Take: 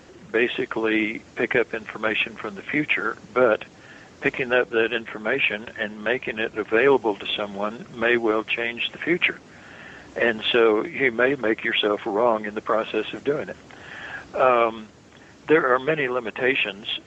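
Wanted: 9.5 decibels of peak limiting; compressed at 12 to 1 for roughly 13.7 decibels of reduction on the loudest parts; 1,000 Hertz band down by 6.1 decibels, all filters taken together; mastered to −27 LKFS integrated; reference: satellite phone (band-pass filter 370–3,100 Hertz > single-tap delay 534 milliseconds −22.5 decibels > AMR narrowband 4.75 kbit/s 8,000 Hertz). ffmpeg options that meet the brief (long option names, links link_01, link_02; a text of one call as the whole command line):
ffmpeg -i in.wav -af "equalizer=frequency=1000:width_type=o:gain=-8.5,acompressor=threshold=-28dB:ratio=12,alimiter=level_in=1dB:limit=-24dB:level=0:latency=1,volume=-1dB,highpass=370,lowpass=3100,aecho=1:1:534:0.075,volume=13.5dB" -ar 8000 -c:a libopencore_amrnb -b:a 4750 out.amr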